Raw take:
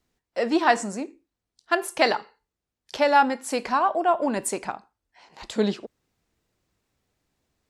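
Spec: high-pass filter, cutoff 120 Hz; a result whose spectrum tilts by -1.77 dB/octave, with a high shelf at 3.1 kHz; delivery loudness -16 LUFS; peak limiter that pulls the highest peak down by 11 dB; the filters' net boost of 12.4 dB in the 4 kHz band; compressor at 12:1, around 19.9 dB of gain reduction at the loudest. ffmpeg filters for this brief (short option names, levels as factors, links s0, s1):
-af "highpass=120,highshelf=f=3100:g=8,equalizer=f=4000:t=o:g=9,acompressor=threshold=0.0282:ratio=12,volume=12.6,alimiter=limit=0.668:level=0:latency=1"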